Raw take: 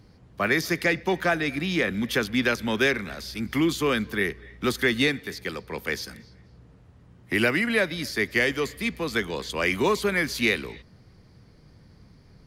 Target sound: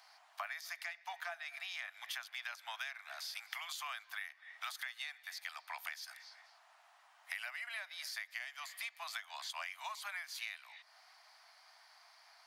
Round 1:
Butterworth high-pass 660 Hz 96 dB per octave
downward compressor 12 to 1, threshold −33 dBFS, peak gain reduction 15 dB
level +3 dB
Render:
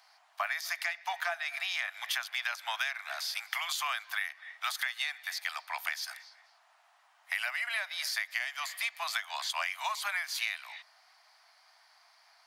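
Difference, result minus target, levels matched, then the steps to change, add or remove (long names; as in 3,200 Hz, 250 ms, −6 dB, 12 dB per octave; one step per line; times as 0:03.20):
downward compressor: peak gain reduction −10 dB
change: downward compressor 12 to 1, threshold −44 dBFS, peak gain reduction 25 dB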